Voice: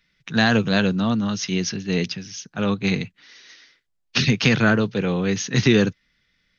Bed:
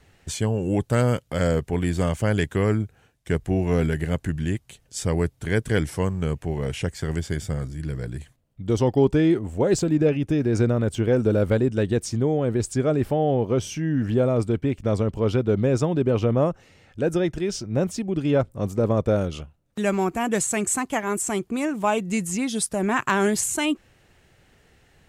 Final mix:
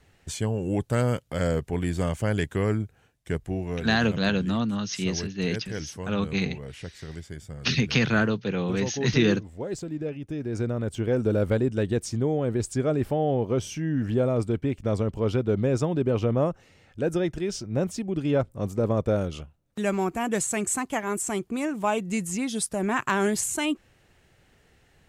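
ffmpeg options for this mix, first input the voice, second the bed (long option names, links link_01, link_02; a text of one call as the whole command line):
ffmpeg -i stem1.wav -i stem2.wav -filter_complex "[0:a]adelay=3500,volume=-5dB[link_01];[1:a]volume=5.5dB,afade=type=out:start_time=3.14:duration=0.75:silence=0.375837,afade=type=in:start_time=10.2:duration=1.17:silence=0.354813[link_02];[link_01][link_02]amix=inputs=2:normalize=0" out.wav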